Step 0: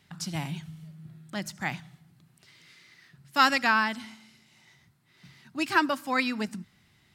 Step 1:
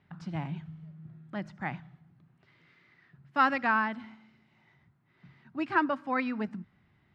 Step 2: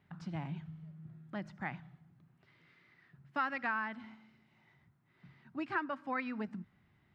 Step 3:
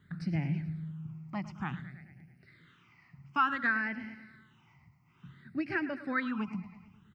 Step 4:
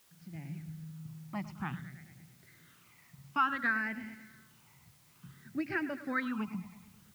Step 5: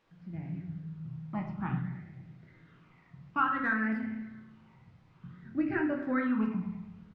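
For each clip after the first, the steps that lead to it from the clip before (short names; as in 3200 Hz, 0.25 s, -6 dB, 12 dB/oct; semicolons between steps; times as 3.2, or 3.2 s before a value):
LPF 1700 Hz 12 dB/oct; gain -1.5 dB
dynamic EQ 1800 Hz, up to +5 dB, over -37 dBFS, Q 0.92; compressor 2.5:1, threshold -33 dBFS, peak gain reduction 11.5 dB; gain -3 dB
feedback echo 0.108 s, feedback 59%, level -15 dB; phaser stages 8, 0.56 Hz, lowest notch 470–1100 Hz; ending taper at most 300 dB/s; gain +8 dB
opening faded in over 1.39 s; added noise white -64 dBFS; gain -1.5 dB
tape spacing loss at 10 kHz 38 dB; speakerphone echo 0.27 s, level -22 dB; reverb RT60 0.55 s, pre-delay 6 ms, DRR 1 dB; gain +4 dB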